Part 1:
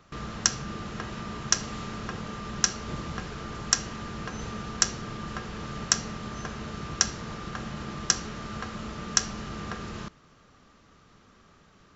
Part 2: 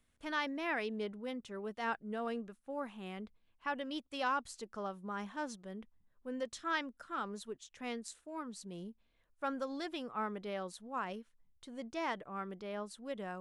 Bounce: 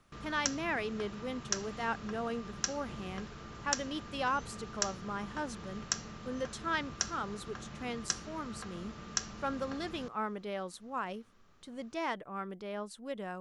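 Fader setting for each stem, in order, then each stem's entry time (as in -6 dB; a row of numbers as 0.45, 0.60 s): -10.0, +2.0 dB; 0.00, 0.00 s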